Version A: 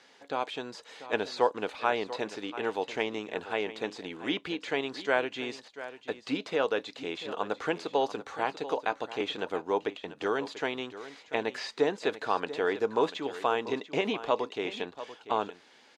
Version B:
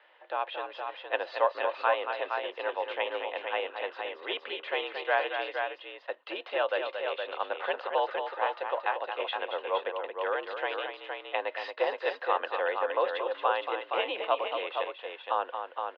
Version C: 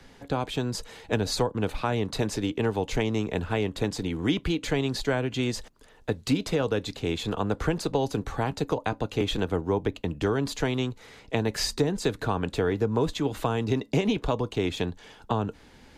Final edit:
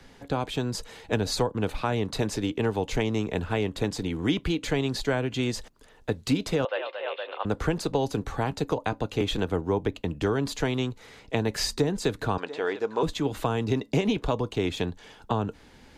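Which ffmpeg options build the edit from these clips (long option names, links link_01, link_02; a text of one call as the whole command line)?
ffmpeg -i take0.wav -i take1.wav -i take2.wav -filter_complex "[2:a]asplit=3[link_01][link_02][link_03];[link_01]atrim=end=6.652[link_04];[1:a]atrim=start=6.648:end=7.452[link_05];[link_02]atrim=start=7.448:end=12.382[link_06];[0:a]atrim=start=12.378:end=13.032[link_07];[link_03]atrim=start=13.028[link_08];[link_04][link_05]acrossfade=duration=0.004:curve1=hsin:curve2=hsin[link_09];[link_09][link_06]acrossfade=duration=0.004:curve1=hsin:curve2=hsin[link_10];[link_10][link_07]acrossfade=duration=0.004:curve1=hsin:curve2=hsin[link_11];[link_11][link_08]acrossfade=duration=0.004:curve1=hsin:curve2=hsin" out.wav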